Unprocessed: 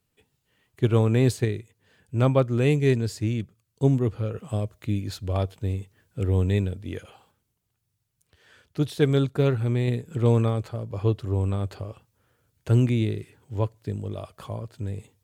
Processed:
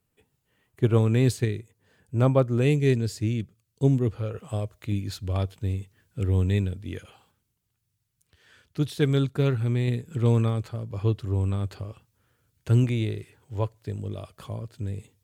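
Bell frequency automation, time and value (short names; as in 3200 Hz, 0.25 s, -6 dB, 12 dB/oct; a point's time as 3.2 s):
bell -5 dB 1.6 oct
4100 Hz
from 0.98 s 710 Hz
from 1.59 s 3000 Hz
from 2.62 s 950 Hz
from 4.11 s 210 Hz
from 4.92 s 620 Hz
from 12.84 s 220 Hz
from 13.99 s 810 Hz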